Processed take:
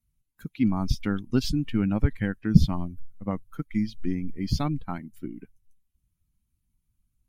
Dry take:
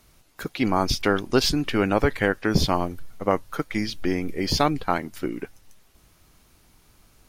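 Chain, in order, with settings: expander on every frequency bin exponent 1.5; resonant low shelf 300 Hz +13.5 dB, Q 1.5; trim -9 dB

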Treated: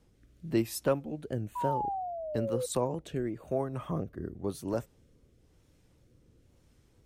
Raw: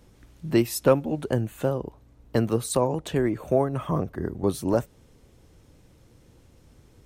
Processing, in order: wow and flutter 66 cents; painted sound fall, 1.55–2.66 s, 490–1000 Hz -25 dBFS; rotary cabinet horn 1 Hz; trim -7 dB

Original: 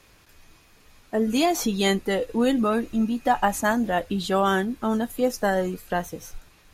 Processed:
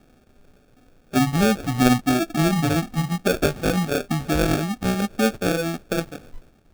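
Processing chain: pitch bend over the whole clip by -10.5 st ending unshifted; fifteen-band graphic EQ 250 Hz +9 dB, 1 kHz +4 dB, 4 kHz -11 dB, 10 kHz -5 dB; sample-rate reducer 1 kHz, jitter 0%

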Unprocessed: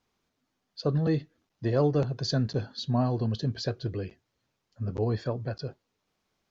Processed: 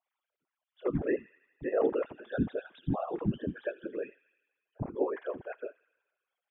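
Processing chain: formants replaced by sine waves; feedback echo behind a high-pass 82 ms, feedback 67%, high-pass 2.6 kHz, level -11 dB; whisper effect; trim -5 dB

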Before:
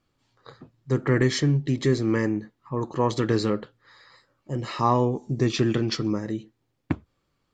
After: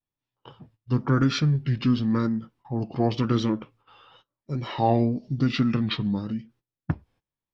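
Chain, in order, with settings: gate -55 dBFS, range -20 dB; vibrato 0.95 Hz 90 cents; formant shift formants -5 st

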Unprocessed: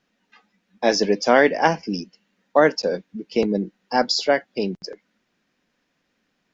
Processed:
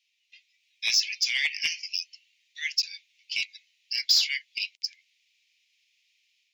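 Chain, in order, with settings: steep high-pass 2.2 kHz 72 dB/octave; level rider gain up to 5 dB; overdrive pedal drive 14 dB, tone 5.1 kHz, clips at -5 dBFS; trim -5 dB

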